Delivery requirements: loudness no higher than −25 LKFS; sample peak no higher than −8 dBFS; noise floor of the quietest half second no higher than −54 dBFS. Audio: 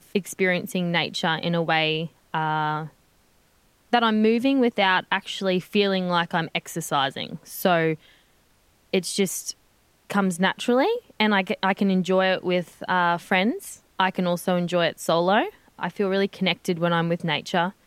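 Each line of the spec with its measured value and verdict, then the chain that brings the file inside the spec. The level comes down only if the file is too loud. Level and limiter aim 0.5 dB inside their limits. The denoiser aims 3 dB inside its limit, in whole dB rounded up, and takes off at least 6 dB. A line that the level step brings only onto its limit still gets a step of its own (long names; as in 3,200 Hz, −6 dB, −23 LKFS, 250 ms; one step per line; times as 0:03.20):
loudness −23.5 LKFS: out of spec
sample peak −6.5 dBFS: out of spec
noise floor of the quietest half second −62 dBFS: in spec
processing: level −2 dB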